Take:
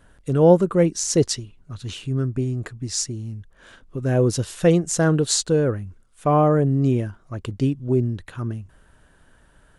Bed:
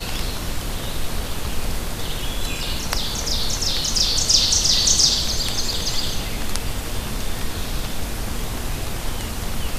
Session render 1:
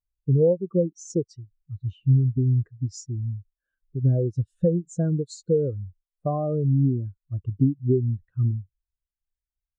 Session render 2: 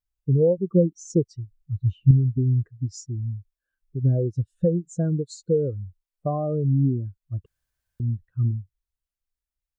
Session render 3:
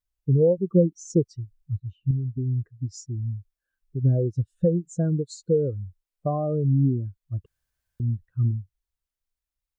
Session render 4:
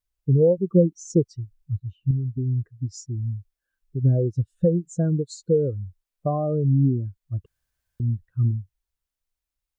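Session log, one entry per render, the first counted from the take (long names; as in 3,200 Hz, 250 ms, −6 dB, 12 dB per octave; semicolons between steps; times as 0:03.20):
downward compressor 16 to 1, threshold −23 dBFS, peak gain reduction 16 dB; every bin expanded away from the loudest bin 2.5 to 1
0:00.58–0:02.11: low-shelf EQ 280 Hz +8 dB; 0:07.46–0:08.00: fill with room tone
0:01.80–0:03.31: fade in linear, from −13.5 dB
level +1.5 dB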